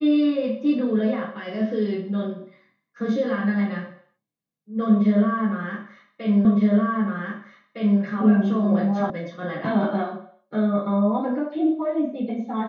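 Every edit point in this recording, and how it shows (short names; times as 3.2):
6.45 repeat of the last 1.56 s
9.1 sound cut off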